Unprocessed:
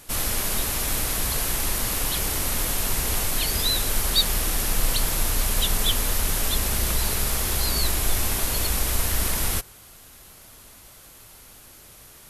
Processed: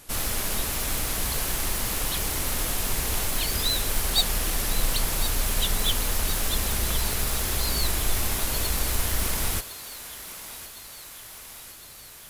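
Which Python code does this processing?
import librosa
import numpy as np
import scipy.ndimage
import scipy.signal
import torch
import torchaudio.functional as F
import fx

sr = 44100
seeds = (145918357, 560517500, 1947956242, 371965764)

y = fx.tracing_dist(x, sr, depth_ms=0.026)
y = fx.echo_thinned(y, sr, ms=1059, feedback_pct=65, hz=470.0, wet_db=-12.5)
y = y * librosa.db_to_amplitude(-2.0)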